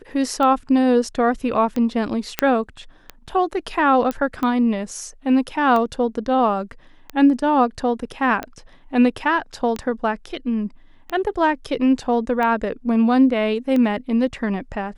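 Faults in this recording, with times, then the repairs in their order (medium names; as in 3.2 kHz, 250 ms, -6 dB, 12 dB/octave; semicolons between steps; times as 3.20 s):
tick 45 rpm -13 dBFS
2.39 s: pop -2 dBFS
4.11 s: pop -12 dBFS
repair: de-click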